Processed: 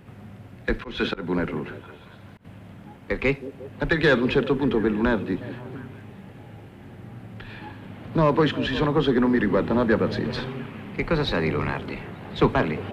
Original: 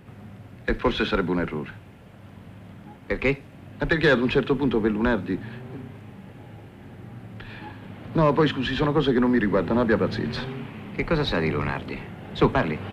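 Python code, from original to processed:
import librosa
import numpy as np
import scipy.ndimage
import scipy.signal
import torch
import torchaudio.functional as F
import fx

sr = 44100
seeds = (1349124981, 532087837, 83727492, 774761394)

y = fx.echo_stepped(x, sr, ms=177, hz=320.0, octaves=0.7, feedback_pct=70, wet_db=-11)
y = fx.auto_swell(y, sr, attack_ms=198.0, at=(0.69, 2.45))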